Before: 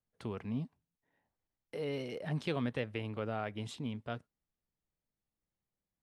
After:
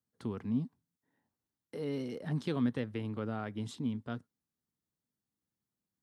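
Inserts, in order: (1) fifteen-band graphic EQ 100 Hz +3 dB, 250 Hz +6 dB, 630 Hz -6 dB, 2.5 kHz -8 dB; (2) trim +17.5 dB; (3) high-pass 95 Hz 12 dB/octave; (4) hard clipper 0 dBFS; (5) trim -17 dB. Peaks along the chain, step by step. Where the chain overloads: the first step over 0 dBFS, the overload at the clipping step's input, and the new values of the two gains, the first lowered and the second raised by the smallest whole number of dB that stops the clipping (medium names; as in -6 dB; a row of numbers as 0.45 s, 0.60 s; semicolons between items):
-20.0 dBFS, -2.5 dBFS, -3.0 dBFS, -3.0 dBFS, -20.0 dBFS; nothing clips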